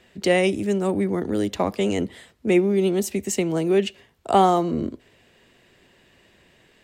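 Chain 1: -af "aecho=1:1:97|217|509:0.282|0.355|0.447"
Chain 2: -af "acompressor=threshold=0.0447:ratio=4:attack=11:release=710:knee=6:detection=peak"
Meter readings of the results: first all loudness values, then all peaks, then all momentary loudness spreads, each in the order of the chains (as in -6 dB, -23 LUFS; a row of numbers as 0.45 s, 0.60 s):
-21.0 LUFS, -31.5 LUFS; -5.5 dBFS, -15.5 dBFS; 9 LU, 8 LU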